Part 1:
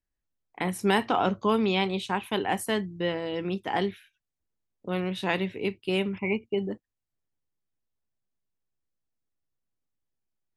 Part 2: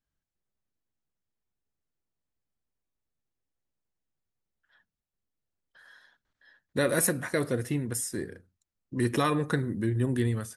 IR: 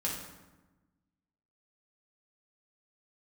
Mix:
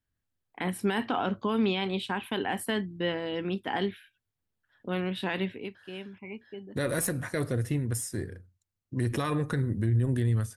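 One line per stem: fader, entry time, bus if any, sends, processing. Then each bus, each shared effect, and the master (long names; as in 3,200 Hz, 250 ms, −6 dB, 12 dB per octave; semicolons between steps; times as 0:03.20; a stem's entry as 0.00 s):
−2.0 dB, 0.00 s, no send, thirty-one-band graphic EQ 250 Hz +7 dB, 1,600 Hz +6 dB, 3,150 Hz +4 dB, 6,300 Hz −11 dB; automatic ducking −13 dB, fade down 0.25 s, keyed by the second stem
−2.5 dB, 0.00 s, no send, parametric band 99 Hz +13 dB 0.79 octaves; harmonic generator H 2 −15 dB, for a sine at −11 dBFS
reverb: not used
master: brickwall limiter −18 dBFS, peak gain reduction 8.5 dB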